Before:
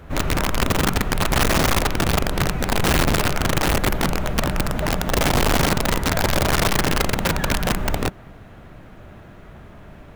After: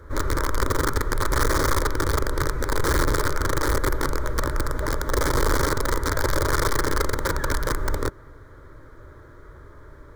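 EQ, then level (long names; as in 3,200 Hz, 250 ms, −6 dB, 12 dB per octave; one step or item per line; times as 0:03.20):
high-shelf EQ 8,900 Hz −7 dB
phaser with its sweep stopped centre 730 Hz, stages 6
0.0 dB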